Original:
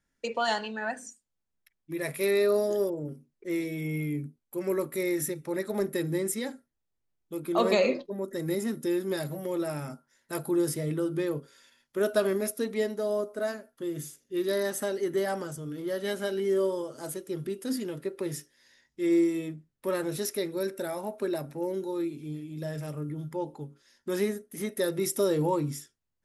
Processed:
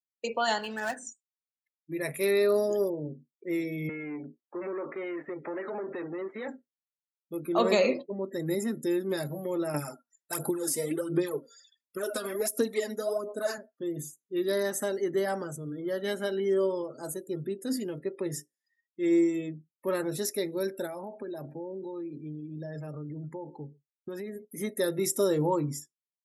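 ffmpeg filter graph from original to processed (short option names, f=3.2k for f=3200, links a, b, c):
-filter_complex "[0:a]asettb=1/sr,asplit=3[a][b][c];[a]atrim=end=0.594[d];[b]atrim=start=0.59:end=1.03,asetpts=PTS-STARTPTS,afade=t=in:d=0.004:c=qsin,afade=t=out:st=0.436:d=0.004:c=qsin,lowshelf=f=110:g=-8,acrusher=bits=2:mode=log:mix=0:aa=0.000001[e];[c]atrim=start=1.026[f];[d][e]acrossfade=d=0.004:c1=hsin:c2=qsin[g];[g][f]acrossfade=d=0.004:c1=qsin:c2=hsin,asettb=1/sr,asplit=3[h][i][j];[h]atrim=end=3.894[k];[i]atrim=start=3.89:end=6.48,asetpts=PTS-STARTPTS,afade=t=in:d=0.004:c=qsin,afade=t=out:st=2.586:d=0.004:c=qsin,acompressor=threshold=-37dB:ratio=16:attack=3.2:release=140:knee=1:detection=peak,asplit=2[l][m];[m]highpass=f=720:p=1,volume=25dB,asoftclip=type=tanh:threshold=-25.5dB[n];[l][n]amix=inputs=2:normalize=0,lowpass=f=2k:p=1,volume=-6dB,highpass=250,lowpass=2.6k[o];[j]atrim=start=6.476[p];[k][o]acrossfade=d=0.004:c1=hsin:c2=qsin[q];[q][p]acrossfade=d=0.004:c1=qsin:c2=hsin,asettb=1/sr,asplit=3[r][s][t];[r]atrim=end=9.744[u];[s]atrim=start=9.74:end=13.58,asetpts=PTS-STARTPTS,afade=t=in:d=0.004:c=qsin,afade=t=out:st=3.836:d=0.004:c=qsin,bass=f=250:g=-7,treble=f=4k:g=7,acompressor=threshold=-28dB:ratio=8:attack=3.2:release=140:knee=1:detection=peak,aphaser=in_gain=1:out_gain=1:delay=4.3:decay=0.66:speed=1.4:type=sinusoidal[v];[t]atrim=start=13.576[w];[u][v]acrossfade=d=0.004:c1=hsin:c2=qsin[x];[x][w]acrossfade=d=0.004:c1=qsin:c2=hsin,asettb=1/sr,asplit=3[y][z][aa];[y]atrim=end=20.864[ab];[z]atrim=start=20.86:end=24.45,asetpts=PTS-STARTPTS,afade=t=in:d=0.004:c=qsin,afade=t=out:st=3.586:d=0.004:c=qsin,agate=range=-33dB:threshold=-49dB:ratio=3:release=100:detection=peak,aecho=1:1:131:0.0631,atrim=end_sample=158319,acompressor=threshold=-34dB:ratio=8:attack=3.2:release=140:knee=1:detection=peak[ac];[aa]atrim=start=24.446[ad];[ab][ac]acrossfade=d=0.004:c1=hsin:c2=qsin[ae];[ae][ad]acrossfade=d=0.004:c1=qsin:c2=hsin,highpass=95,afftdn=nr=35:nf=-49,equalizer=f=7.2k:t=o:w=0.33:g=5"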